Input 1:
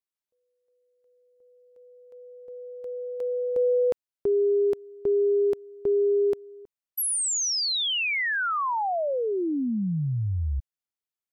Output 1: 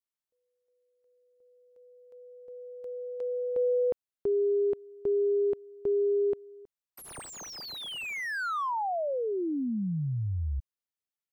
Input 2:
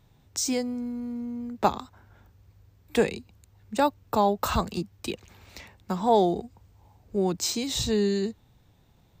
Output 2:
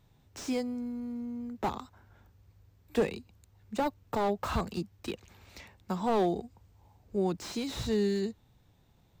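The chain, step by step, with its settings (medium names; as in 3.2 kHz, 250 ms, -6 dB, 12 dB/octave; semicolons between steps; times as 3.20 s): slew-rate limiter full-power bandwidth 65 Hz; trim -4 dB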